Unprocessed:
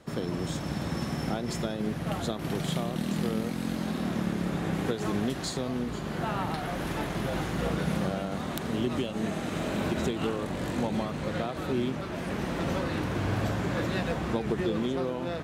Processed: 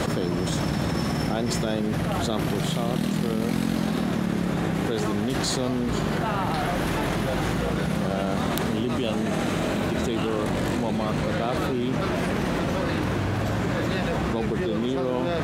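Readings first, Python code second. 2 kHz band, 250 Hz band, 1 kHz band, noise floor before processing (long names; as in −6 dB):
+6.0 dB, +5.0 dB, +6.0 dB, −35 dBFS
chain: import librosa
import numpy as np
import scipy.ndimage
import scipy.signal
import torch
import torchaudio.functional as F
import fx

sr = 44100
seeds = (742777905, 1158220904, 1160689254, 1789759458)

y = fx.env_flatten(x, sr, amount_pct=100)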